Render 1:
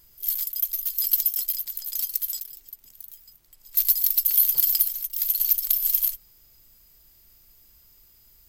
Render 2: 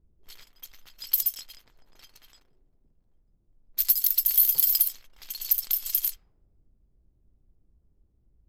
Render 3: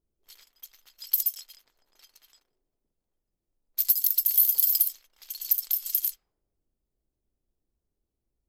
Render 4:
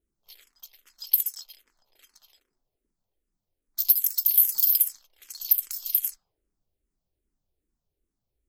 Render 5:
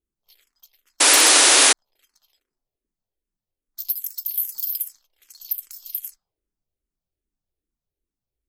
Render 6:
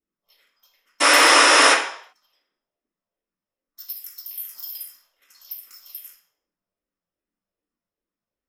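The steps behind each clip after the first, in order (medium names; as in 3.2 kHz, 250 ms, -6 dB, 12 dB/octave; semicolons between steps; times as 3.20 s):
level-controlled noise filter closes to 320 Hz, open at -17.5 dBFS
tone controls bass -12 dB, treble +6 dB; trim -6.5 dB
barber-pole phaser -2.5 Hz; trim +3.5 dB
painted sound noise, 1.00–1.73 s, 260–11000 Hz -8 dBFS; trim -5.5 dB
reverberation RT60 0.60 s, pre-delay 3 ms, DRR -11 dB; trim -10.5 dB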